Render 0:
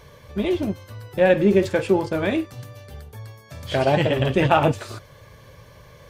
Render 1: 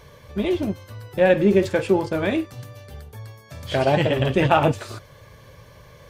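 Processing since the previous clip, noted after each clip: nothing audible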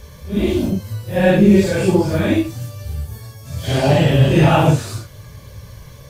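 phase scrambler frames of 0.2 s; tone controls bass +10 dB, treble +10 dB; gain +2 dB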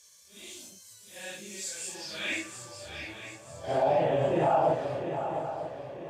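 band-pass sweep 7400 Hz -> 730 Hz, 1.9–2.79; limiter -17 dBFS, peak gain reduction 10 dB; swung echo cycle 0.943 s, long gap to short 3:1, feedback 40%, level -8.5 dB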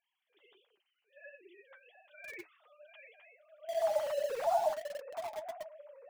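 sine-wave speech; in parallel at -6 dB: bit-crush 5-bit; on the sum: flange 1.4 Hz, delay 4 ms, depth 6.3 ms, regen +49%; gain -7 dB

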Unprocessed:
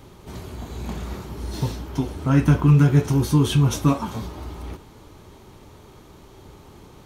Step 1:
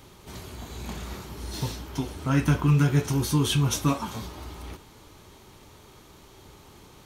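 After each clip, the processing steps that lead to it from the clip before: tilt shelf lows -4 dB, about 1300 Hz; gain -2 dB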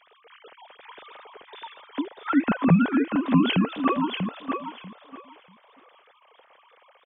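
sine-wave speech; on a send: feedback echo 0.64 s, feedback 19%, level -6 dB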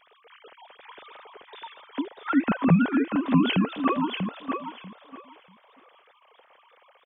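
vibrato 7.9 Hz 28 cents; gain -1 dB

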